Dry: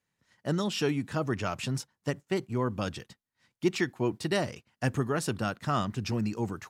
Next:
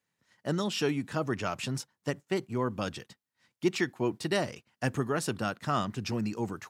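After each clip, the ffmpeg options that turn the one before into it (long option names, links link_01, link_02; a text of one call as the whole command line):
ffmpeg -i in.wav -af "highpass=frequency=130:poles=1" out.wav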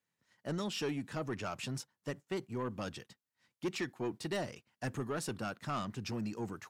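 ffmpeg -i in.wav -af "asoftclip=type=tanh:threshold=-24dB,volume=-5dB" out.wav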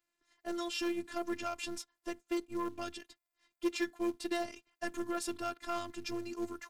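ffmpeg -i in.wav -filter_complex "[0:a]afftfilt=real='hypot(re,im)*cos(PI*b)':imag='0':win_size=512:overlap=0.75,asplit=2[link_01][link_02];[link_02]acrusher=bits=4:mode=log:mix=0:aa=0.000001,volume=-3dB[link_03];[link_01][link_03]amix=inputs=2:normalize=0" -ar 44100 -c:a sbc -b:a 128k out.sbc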